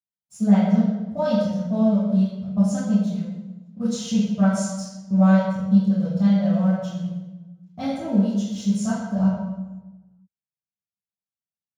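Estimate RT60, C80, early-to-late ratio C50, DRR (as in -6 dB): 1.1 s, 1.5 dB, -2.0 dB, -12.0 dB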